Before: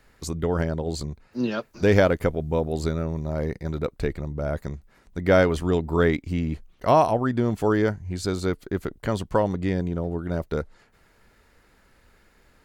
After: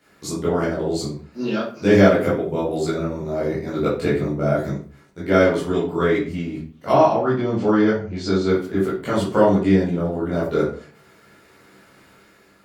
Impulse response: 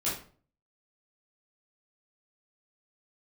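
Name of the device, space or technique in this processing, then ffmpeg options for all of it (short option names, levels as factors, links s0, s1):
far laptop microphone: -filter_complex "[0:a]asettb=1/sr,asplit=3[s0][s1][s2];[s0]atrim=end=6.914[s3];[s1]atrim=start=6.91:end=8.48,asetpts=PTS-STARTPTS,afade=t=in:d=0.004:c=qsin,afade=t=out:st=1.566:d=0.004:c=qsin,lowpass=f=5900:w=0.5412,lowpass=f=5900:w=1.3066[s4];[s2]atrim=start=8.476[s5];[s3][s4]acrossfade=d=0.004:c1=hsin:c2=qsin[s6];[s6][s5]acrossfade=d=0.004:c1=qsin:c2=hsin[s7];[1:a]atrim=start_sample=2205[s8];[s7][s8]afir=irnorm=-1:irlink=0,highpass=150,dynaudnorm=f=860:g=3:m=2.11,volume=0.891"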